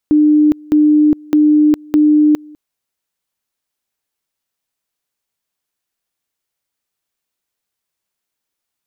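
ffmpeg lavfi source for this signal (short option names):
-f lavfi -i "aevalsrc='pow(10,(-6.5-27*gte(mod(t,0.61),0.41))/20)*sin(2*PI*301*t)':d=2.44:s=44100"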